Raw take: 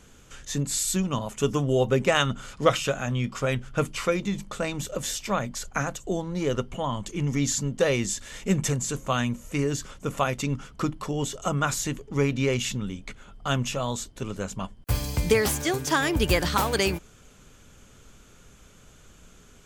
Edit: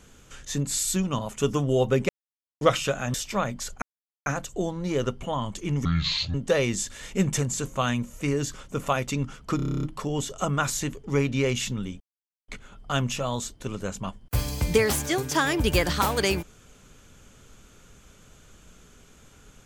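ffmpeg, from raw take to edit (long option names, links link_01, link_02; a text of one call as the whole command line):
ffmpeg -i in.wav -filter_complex "[0:a]asplit=17[link_01][link_02][link_03][link_04][link_05][link_06][link_07][link_08][link_09][link_10][link_11][link_12][link_13][link_14][link_15][link_16][link_17];[link_01]atrim=end=2.09,asetpts=PTS-STARTPTS,afade=type=out:start_time=2.086:duration=0.004:curve=hsin[link_18];[link_02]atrim=start=2.09:end=2.61,asetpts=PTS-STARTPTS,volume=0[link_19];[link_03]atrim=start=2.61:end=3.142,asetpts=PTS-STARTPTS,afade=type=in:duration=0.004:curve=hsin[link_20];[link_04]atrim=start=5.088:end=5.77,asetpts=PTS-STARTPTS,afade=type=out:start_time=0.678:duration=0.004:curve=hsin,apad=pad_dur=0.44[link_21];[link_05]atrim=start=5.77:end=7.364,asetpts=PTS-STARTPTS,afade=type=in:duration=0.004:curve=hsin[link_22];[link_06]atrim=start=7.36:end=7.65,asetpts=PTS-STARTPTS,asetrate=26019,aresample=44100,atrim=end_sample=21676,asetpts=PTS-STARTPTS[link_23];[link_07]atrim=start=7.646:end=10.902[link_24];[link_08]atrim=start=10.868:end=10.902[link_25];[link_09]atrim=start=10.868:end=10.902[link_26];[link_10]atrim=start=10.868:end=10.902[link_27];[link_11]atrim=start=10.868:end=10.902[link_28];[link_12]atrim=start=10.868:end=10.902[link_29];[link_13]atrim=start=10.868:end=10.902[link_30];[link_14]atrim=start=10.868:end=10.902[link_31];[link_15]atrim=start=10.868:end=10.902[link_32];[link_16]atrim=start=10.868:end=13.04,asetpts=PTS-STARTPTS,afade=type=out:start_time=2.168:duration=0.004:curve=hsin,apad=pad_dur=0.48[link_33];[link_17]atrim=start=13.04,asetpts=PTS-STARTPTS,afade=type=in:duration=0.004:curve=hsin[link_34];[link_18][link_19][link_20]concat=n=3:v=0:a=1[link_35];[link_21][link_22]concat=n=2:v=0:a=1[link_36];[link_35][link_36]acrossfade=duration=0.004:curve1=hsin:curve2=hsin[link_37];[link_37][link_23]acrossfade=duration=0.004:curve1=hsin:curve2=hsin[link_38];[link_38][link_24]acrossfade=duration=0.004:curve1=hsin:curve2=hsin[link_39];[link_39][link_25]acrossfade=duration=0.004:curve1=hsin:curve2=hsin[link_40];[link_40][link_26]acrossfade=duration=0.004:curve1=hsin:curve2=hsin[link_41];[link_41][link_27]acrossfade=duration=0.004:curve1=hsin:curve2=hsin[link_42];[link_42][link_28]acrossfade=duration=0.004:curve1=hsin:curve2=hsin[link_43];[link_43][link_29]acrossfade=duration=0.004:curve1=hsin:curve2=hsin[link_44];[link_44][link_30]acrossfade=duration=0.004:curve1=hsin:curve2=hsin[link_45];[link_45][link_31]acrossfade=duration=0.004:curve1=hsin:curve2=hsin[link_46];[link_46][link_32]acrossfade=duration=0.004:curve1=hsin:curve2=hsin[link_47];[link_33][link_34]concat=n=2:v=0:a=1[link_48];[link_47][link_48]acrossfade=duration=0.004:curve1=hsin:curve2=hsin" out.wav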